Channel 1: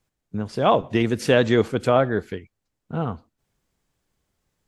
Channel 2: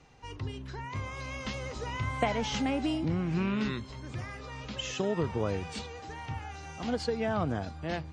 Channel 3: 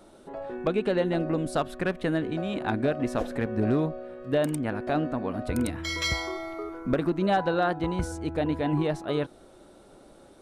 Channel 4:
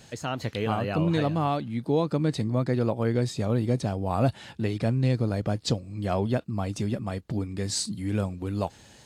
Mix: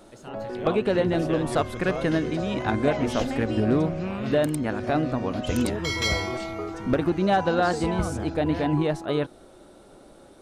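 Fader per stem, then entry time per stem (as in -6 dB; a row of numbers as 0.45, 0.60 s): -15.5, -2.0, +2.5, -13.0 dB; 0.00, 0.65, 0.00, 0.00 s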